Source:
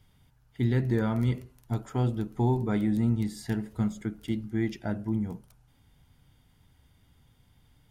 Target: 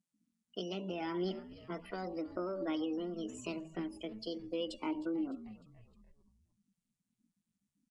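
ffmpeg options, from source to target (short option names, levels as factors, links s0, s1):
-filter_complex "[0:a]afftfilt=real='re*gte(hypot(re,im),0.00631)':imag='im*gte(hypot(re,im),0.00631)':win_size=1024:overlap=0.75,alimiter=limit=0.1:level=0:latency=1:release=126,highpass=f=170:w=0.5412,highpass=f=170:w=1.3066,equalizer=f=320:t=q:w=4:g=-4,equalizer=f=800:t=q:w=4:g=-5,equalizer=f=1400:t=q:w=4:g=-4,equalizer=f=2100:t=q:w=4:g=6,equalizer=f=3000:t=q:w=4:g=7,lowpass=f=6300:w=0.5412,lowpass=f=6300:w=1.3066,asplit=5[s0][s1][s2][s3][s4];[s1]adelay=302,afreqshift=-65,volume=0.119[s5];[s2]adelay=604,afreqshift=-130,volume=0.0596[s6];[s3]adelay=906,afreqshift=-195,volume=0.0299[s7];[s4]adelay=1208,afreqshift=-260,volume=0.0148[s8];[s0][s5][s6][s7][s8]amix=inputs=5:normalize=0,acompressor=threshold=0.0178:ratio=2,bandreject=f=378.3:t=h:w=4,bandreject=f=756.6:t=h:w=4,bandreject=f=1134.9:t=h:w=4,bandreject=f=1513.2:t=h:w=4,bandreject=f=1891.5:t=h:w=4,bandreject=f=2269.8:t=h:w=4,bandreject=f=2648.1:t=h:w=4,bandreject=f=3026.4:t=h:w=4,bandreject=f=3404.7:t=h:w=4,bandreject=f=3783:t=h:w=4,bandreject=f=4161.3:t=h:w=4,bandreject=f=4539.6:t=h:w=4,bandreject=f=4917.9:t=h:w=4,bandreject=f=5296.2:t=h:w=4,bandreject=f=5674.5:t=h:w=4,bandreject=f=6052.8:t=h:w=4,bandreject=f=6431.1:t=h:w=4,bandreject=f=6809.4:t=h:w=4,bandreject=f=7187.7:t=h:w=4,asetrate=66075,aresample=44100,atempo=0.66742,flanger=delay=3.2:depth=2.1:regen=37:speed=0.4:shape=triangular,volume=1.33" -ar 22050 -c:a nellymoser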